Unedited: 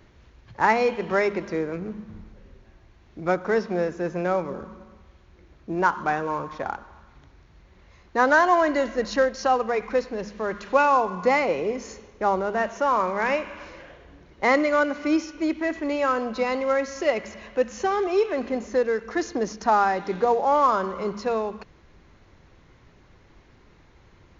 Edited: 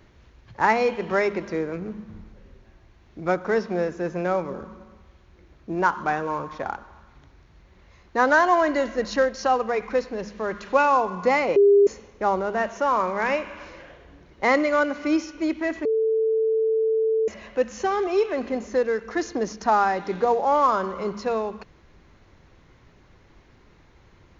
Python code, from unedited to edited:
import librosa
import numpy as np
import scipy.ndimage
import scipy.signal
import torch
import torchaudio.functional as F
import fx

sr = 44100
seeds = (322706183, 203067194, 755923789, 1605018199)

y = fx.edit(x, sr, fx.bleep(start_s=11.56, length_s=0.31, hz=403.0, db=-11.5),
    fx.bleep(start_s=15.85, length_s=1.43, hz=443.0, db=-18.5), tone=tone)